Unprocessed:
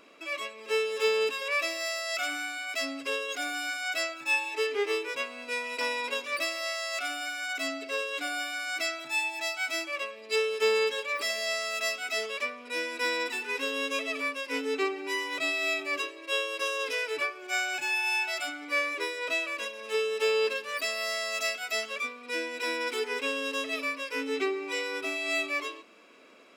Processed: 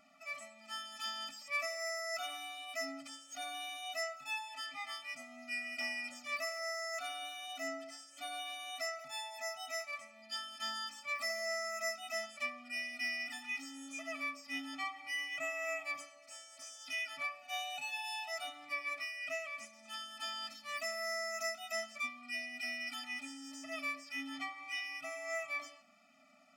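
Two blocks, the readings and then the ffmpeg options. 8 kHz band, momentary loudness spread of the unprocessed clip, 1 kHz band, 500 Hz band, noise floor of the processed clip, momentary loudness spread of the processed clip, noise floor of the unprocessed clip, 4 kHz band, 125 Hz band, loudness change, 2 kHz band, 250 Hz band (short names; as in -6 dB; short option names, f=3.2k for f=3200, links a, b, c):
-7.5 dB, 6 LU, -8.0 dB, -14.5 dB, -59 dBFS, 8 LU, -46 dBFS, -9.0 dB, n/a, -10.0 dB, -9.5 dB, -11.0 dB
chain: -af "bandreject=f=288.4:t=h:w=4,bandreject=f=576.8:t=h:w=4,bandreject=f=865.2:t=h:w=4,bandreject=f=1.1536k:t=h:w=4,bandreject=f=1.442k:t=h:w=4,bandreject=f=1.7304k:t=h:w=4,bandreject=f=2.0188k:t=h:w=4,bandreject=f=2.3072k:t=h:w=4,bandreject=f=2.5956k:t=h:w=4,bandreject=f=2.884k:t=h:w=4,bandreject=f=3.1724k:t=h:w=4,bandreject=f=3.4608k:t=h:w=4,bandreject=f=3.7492k:t=h:w=4,bandreject=f=4.0376k:t=h:w=4,bandreject=f=4.326k:t=h:w=4,bandreject=f=4.6144k:t=h:w=4,bandreject=f=4.9028k:t=h:w=4,bandreject=f=5.1912k:t=h:w=4,bandreject=f=5.4796k:t=h:w=4,bandreject=f=5.768k:t=h:w=4,bandreject=f=6.0564k:t=h:w=4,bandreject=f=6.3448k:t=h:w=4,bandreject=f=6.6332k:t=h:w=4,bandreject=f=6.9216k:t=h:w=4,bandreject=f=7.21k:t=h:w=4,bandreject=f=7.4984k:t=h:w=4,bandreject=f=7.7868k:t=h:w=4,bandreject=f=8.0752k:t=h:w=4,bandreject=f=8.3636k:t=h:w=4,bandreject=f=8.652k:t=h:w=4,bandreject=f=8.9404k:t=h:w=4,afftfilt=real='re*eq(mod(floor(b*sr/1024/290),2),0)':imag='im*eq(mod(floor(b*sr/1024/290),2),0)':win_size=1024:overlap=0.75,volume=-5dB"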